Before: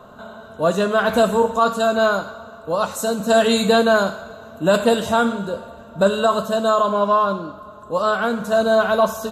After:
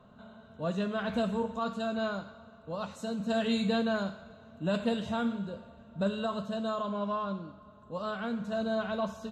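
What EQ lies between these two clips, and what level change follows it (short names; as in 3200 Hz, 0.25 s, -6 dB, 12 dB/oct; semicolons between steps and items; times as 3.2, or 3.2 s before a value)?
tape spacing loss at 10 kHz 22 dB; low shelf 110 Hz -5 dB; band shelf 690 Hz -9 dB 2.7 oct; -6.0 dB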